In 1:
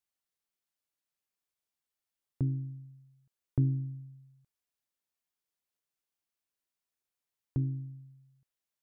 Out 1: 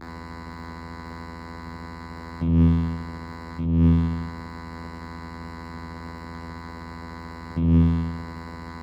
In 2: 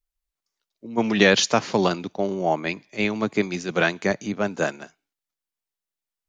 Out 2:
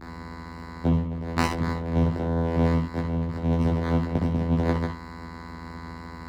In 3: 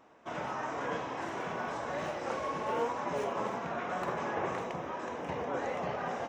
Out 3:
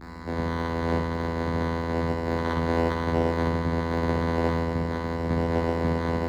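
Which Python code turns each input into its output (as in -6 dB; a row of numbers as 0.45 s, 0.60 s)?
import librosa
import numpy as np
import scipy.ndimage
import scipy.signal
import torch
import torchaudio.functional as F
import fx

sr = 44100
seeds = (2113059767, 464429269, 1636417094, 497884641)

p1 = (np.mod(10.0 ** (8.5 / 20.0) * x + 1.0, 2.0) - 1.0) / 10.0 ** (8.5 / 20.0)
p2 = x + F.gain(torch.from_numpy(p1), -3.5).numpy()
p3 = fx.quant_dither(p2, sr, seeds[0], bits=6, dither='triangular')
p4 = fx.low_shelf(p3, sr, hz=340.0, db=8.5)
p5 = fx.vocoder(p4, sr, bands=4, carrier='saw', carrier_hz=83.3)
p6 = scipy.signal.sosfilt(scipy.signal.cheby1(4, 1.0, 3200.0, 'lowpass', fs=sr, output='sos'), p5)
p7 = fx.over_compress(p6, sr, threshold_db=-25.0, ratio=-1.0)
p8 = fx.doubler(p7, sr, ms=20.0, db=-6.0)
p9 = fx.add_hum(p8, sr, base_hz=60, snr_db=17)
p10 = p9 + fx.room_early_taps(p9, sr, ms=(12, 62, 73), db=(-4.0, -5.0, -7.0), dry=0)
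p11 = fx.running_max(p10, sr, window=9)
y = p11 * 10.0 ** (-26 / 20.0) / np.sqrt(np.mean(np.square(p11)))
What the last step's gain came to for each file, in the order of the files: +2.5 dB, -4.5 dB, -0.5 dB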